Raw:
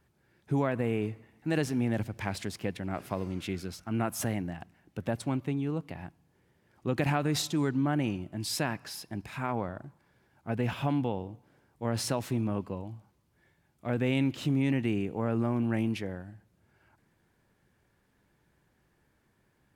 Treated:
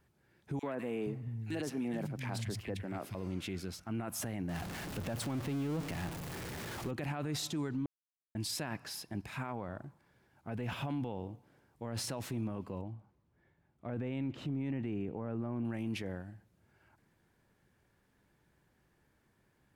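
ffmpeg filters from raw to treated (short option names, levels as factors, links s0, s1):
-filter_complex "[0:a]asettb=1/sr,asplit=3[s0][s1][s2];[s0]atrim=end=0.594[s3];[s1]atrim=start=0.59:end=3.15,asetpts=PTS-STARTPTS,afade=t=in:d=0.004:c=qsin,afade=t=out:st=2.556:d=0.004:c=qsin,acrossover=split=160|1800[s4][s5][s6];[s5]adelay=40[s7];[s4]adelay=470[s8];[s8][s7][s6]amix=inputs=3:normalize=0,atrim=end_sample=112896[s9];[s2]atrim=start=3.146[s10];[s3][s9]acrossfade=d=0.004:c1=hsin:c2=qsin[s11];[s11][s10]acrossfade=d=0.004:c1=qsin:c2=hsin,asettb=1/sr,asplit=3[s12][s13][s14];[s12]atrim=end=4.494[s15];[s13]atrim=start=4.49:end=6.91,asetpts=PTS-STARTPTS,afade=t=in:d=0.004:c=qsin,afade=t=out:st=2.416:d=0.004:c=qsin,aeval=exprs='val(0)+0.5*0.0188*sgn(val(0))':c=same[s16];[s14]atrim=start=6.906[s17];[s15][s16]acrossfade=d=0.004:c1=hsin:c2=qsin[s18];[s18][s17]acrossfade=d=0.004:c1=qsin:c2=hsin,asettb=1/sr,asplit=3[s19][s20][s21];[s19]atrim=end=12.814[s22];[s20]atrim=start=12.81:end=15.65,asetpts=PTS-STARTPTS,afade=t=in:d=0.004:c=qsin,afade=t=out:st=2.836:d=0.004:c=qsin,lowpass=f=1400:p=1[s23];[s21]atrim=start=15.646[s24];[s22][s23]acrossfade=d=0.004:c1=hsin:c2=qsin[s25];[s25][s24]acrossfade=d=0.004:c1=qsin:c2=hsin,asplit=3[s26][s27][s28];[s26]atrim=end=7.86,asetpts=PTS-STARTPTS,afade=t=out:st=7.856:d=0.004:c=hsin[s29];[s27]atrim=start=7.86:end=8.35,asetpts=PTS-STARTPTS,volume=0[s30];[s28]atrim=start=8.35,asetpts=PTS-STARTPTS,afade=t=in:d=0.004:c=hsin[s31];[s29][s30][s31]concat=n=3:v=0:a=1,alimiter=level_in=1.41:limit=0.0631:level=0:latency=1:release=21,volume=0.708,volume=0.794"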